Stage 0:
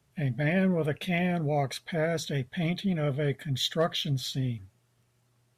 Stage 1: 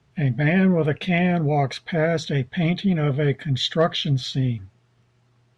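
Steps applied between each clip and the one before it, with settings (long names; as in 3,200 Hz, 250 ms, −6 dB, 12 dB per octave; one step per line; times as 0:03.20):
high-frequency loss of the air 110 metres
notch filter 580 Hz, Q 12
level +8 dB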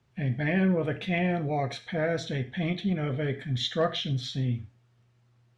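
reverb whose tail is shaped and stops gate 150 ms falling, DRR 8 dB
level −7 dB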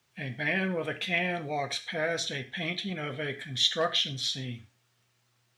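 spectral tilt +3.5 dB per octave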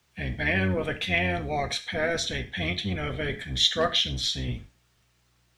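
sub-octave generator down 1 octave, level 0 dB
level +3 dB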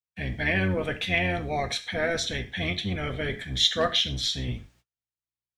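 noise gate −58 dBFS, range −36 dB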